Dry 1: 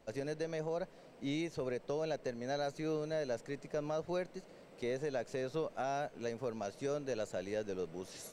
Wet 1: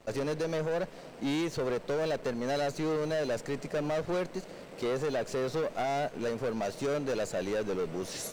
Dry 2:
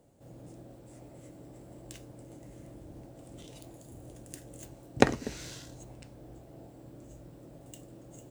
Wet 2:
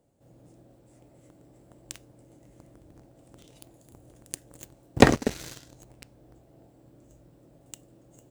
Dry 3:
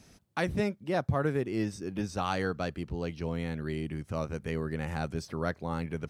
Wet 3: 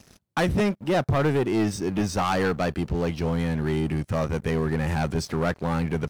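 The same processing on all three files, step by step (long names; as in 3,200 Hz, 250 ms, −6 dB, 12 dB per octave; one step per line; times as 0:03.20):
leveller curve on the samples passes 3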